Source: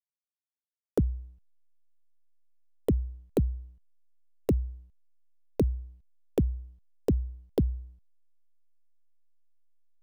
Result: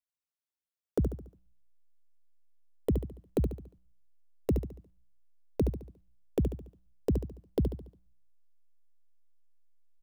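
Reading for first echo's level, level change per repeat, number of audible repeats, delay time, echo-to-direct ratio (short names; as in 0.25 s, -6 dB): -6.5 dB, -7.5 dB, 4, 71 ms, -5.5 dB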